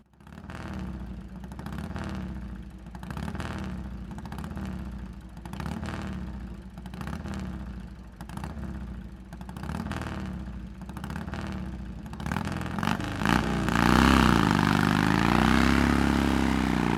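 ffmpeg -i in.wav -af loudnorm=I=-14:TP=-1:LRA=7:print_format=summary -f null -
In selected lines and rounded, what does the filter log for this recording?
Input Integrated:    -25.8 LUFS
Input True Peak:      -8.9 dBTP
Input LRA:            14.8 LU
Input Threshold:     -37.5 LUFS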